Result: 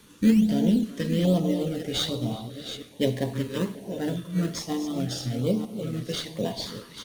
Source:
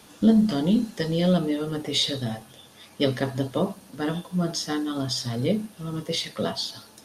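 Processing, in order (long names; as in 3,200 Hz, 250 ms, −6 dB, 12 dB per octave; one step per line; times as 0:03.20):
delay that plays each chunk backwards 471 ms, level −9 dB
in parallel at −5 dB: sample-and-hold swept by an LFO 14×, swing 100% 1.2 Hz
on the sum: notch filter 5,000 Hz, Q 12
far-end echo of a speakerphone 370 ms, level −14 dB
on a send at −16 dB: convolution reverb RT60 1.0 s, pre-delay 43 ms
on the sum: notch on a step sequencer 2.4 Hz 710–1,700 Hz
level −4.5 dB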